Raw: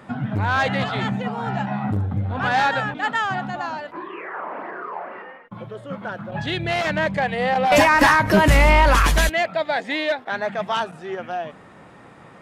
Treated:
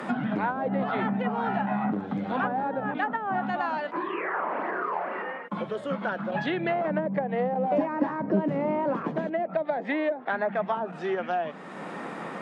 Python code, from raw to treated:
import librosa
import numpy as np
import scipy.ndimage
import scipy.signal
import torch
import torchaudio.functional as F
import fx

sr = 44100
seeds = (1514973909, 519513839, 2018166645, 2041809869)

y = scipy.signal.sosfilt(scipy.signal.butter(6, 170.0, 'highpass', fs=sr, output='sos'), x)
y = fx.env_lowpass_down(y, sr, base_hz=500.0, full_db=-17.5)
y = fx.band_squash(y, sr, depth_pct=70)
y = y * 10.0 ** (-1.5 / 20.0)